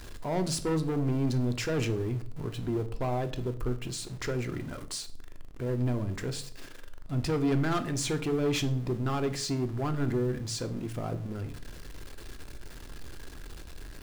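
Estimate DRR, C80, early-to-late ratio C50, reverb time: 9.0 dB, 20.0 dB, 15.5 dB, 0.55 s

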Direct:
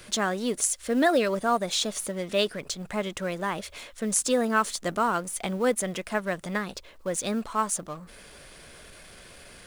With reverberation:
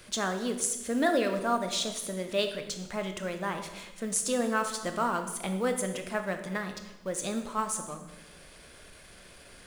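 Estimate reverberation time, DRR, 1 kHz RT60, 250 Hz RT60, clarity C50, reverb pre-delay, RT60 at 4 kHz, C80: 1.0 s, 6.0 dB, 0.95 s, 1.3 s, 8.5 dB, 19 ms, 0.85 s, 10.5 dB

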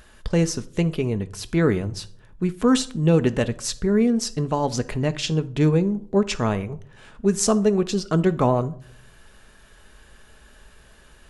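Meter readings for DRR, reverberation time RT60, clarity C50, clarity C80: 10.5 dB, 0.60 s, 18.5 dB, 24.0 dB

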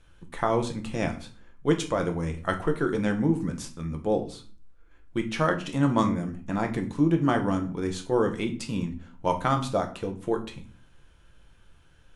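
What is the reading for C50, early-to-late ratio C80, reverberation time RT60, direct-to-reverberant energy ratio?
13.0 dB, 17.5 dB, 0.40 s, 4.5 dB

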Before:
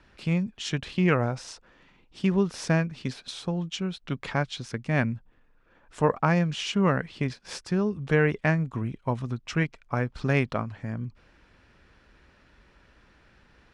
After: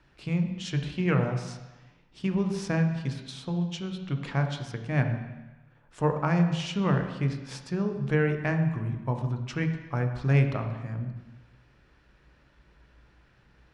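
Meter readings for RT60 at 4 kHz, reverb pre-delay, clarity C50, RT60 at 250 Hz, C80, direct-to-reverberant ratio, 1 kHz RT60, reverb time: 1.1 s, 3 ms, 7.0 dB, 0.90 s, 8.5 dB, 5.0 dB, 1.2 s, 1.1 s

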